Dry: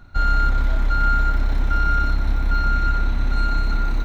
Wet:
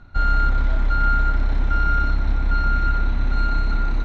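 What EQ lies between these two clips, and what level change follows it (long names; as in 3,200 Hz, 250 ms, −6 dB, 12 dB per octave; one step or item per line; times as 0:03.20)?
high-frequency loss of the air 90 metres
0.0 dB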